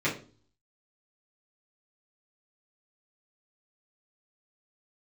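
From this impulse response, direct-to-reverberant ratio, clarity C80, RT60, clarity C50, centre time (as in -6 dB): -8.5 dB, 15.5 dB, 0.40 s, 9.5 dB, 21 ms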